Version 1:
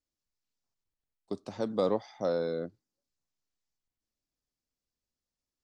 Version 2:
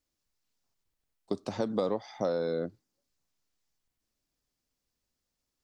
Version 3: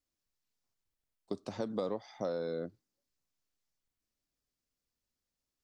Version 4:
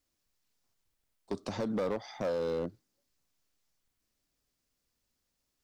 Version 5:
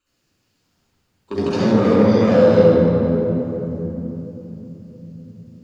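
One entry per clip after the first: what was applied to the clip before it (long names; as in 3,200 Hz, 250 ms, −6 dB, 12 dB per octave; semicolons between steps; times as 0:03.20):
downward compressor 5 to 1, threshold −33 dBFS, peak gain reduction 9.5 dB; level +6.5 dB
parametric band 830 Hz −2 dB 0.25 octaves; level −5.5 dB
in parallel at +2 dB: brickwall limiter −29.5 dBFS, peak gain reduction 6.5 dB; on the sum: gain into a clipping stage and back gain 27.5 dB
flanger 0.63 Hz, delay 5.2 ms, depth 8.8 ms, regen −50%; convolution reverb RT60 3.5 s, pre-delay 38 ms, DRR −7 dB; level +7 dB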